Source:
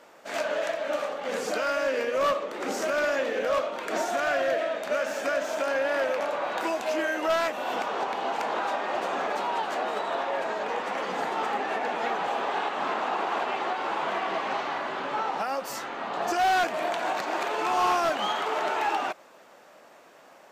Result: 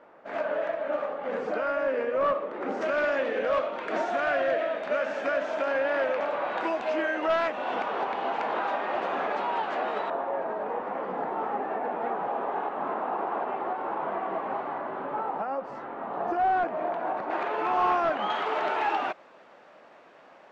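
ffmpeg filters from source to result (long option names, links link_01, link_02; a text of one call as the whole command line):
ffmpeg -i in.wav -af "asetnsamples=nb_out_samples=441:pad=0,asendcmd='2.81 lowpass f 2800;10.1 lowpass f 1100;17.3 lowpass f 2000;18.3 lowpass f 3300',lowpass=1600" out.wav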